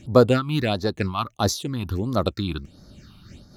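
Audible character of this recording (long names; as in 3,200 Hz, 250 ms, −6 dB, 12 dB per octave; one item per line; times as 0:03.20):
phaser sweep stages 6, 1.5 Hz, lowest notch 480–2,700 Hz
amplitude modulation by smooth noise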